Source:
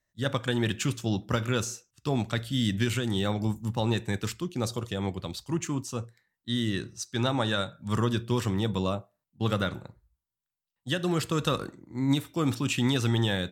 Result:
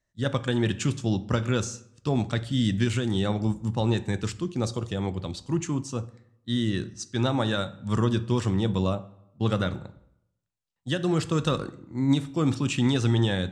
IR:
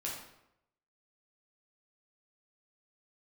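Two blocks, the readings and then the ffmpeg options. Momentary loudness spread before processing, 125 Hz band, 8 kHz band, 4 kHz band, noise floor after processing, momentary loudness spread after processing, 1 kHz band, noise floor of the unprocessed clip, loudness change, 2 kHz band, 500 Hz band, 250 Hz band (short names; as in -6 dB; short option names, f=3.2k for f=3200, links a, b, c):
7 LU, +3.0 dB, -0.5 dB, -1.0 dB, -76 dBFS, 8 LU, +0.5 dB, under -85 dBFS, +2.5 dB, -1.0 dB, +2.0 dB, +3.0 dB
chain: -filter_complex "[0:a]lowpass=f=8.5k:w=0.5412,lowpass=f=8.5k:w=1.3066,equalizer=f=2.7k:w=0.3:g=-4,asplit=2[a][b];[1:a]atrim=start_sample=2205,lowshelf=f=160:g=7.5[c];[b][c]afir=irnorm=-1:irlink=0,volume=-15.5dB[d];[a][d]amix=inputs=2:normalize=0,volume=2dB"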